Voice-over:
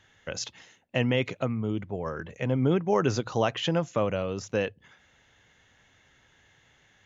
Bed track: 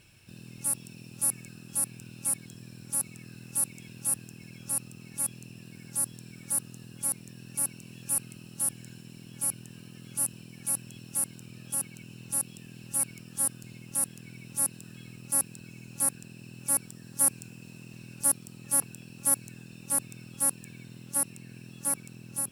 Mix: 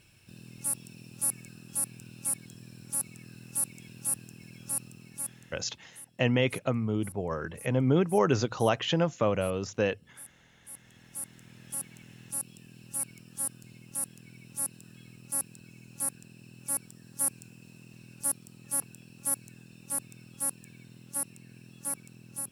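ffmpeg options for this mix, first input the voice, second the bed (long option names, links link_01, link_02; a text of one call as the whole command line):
ffmpeg -i stem1.wav -i stem2.wav -filter_complex "[0:a]adelay=5250,volume=0dB[link_01];[1:a]volume=12dB,afade=type=out:start_time=4.84:duration=0.97:silence=0.141254,afade=type=in:start_time=10.65:duration=1.06:silence=0.199526[link_02];[link_01][link_02]amix=inputs=2:normalize=0" out.wav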